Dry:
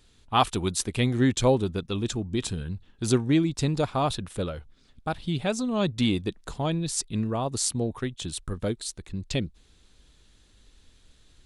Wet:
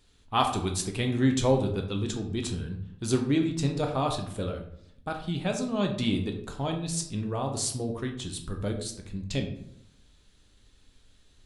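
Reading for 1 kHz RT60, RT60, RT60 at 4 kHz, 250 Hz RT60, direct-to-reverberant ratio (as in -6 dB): 0.70 s, 0.75 s, 0.40 s, 0.90 s, 3.0 dB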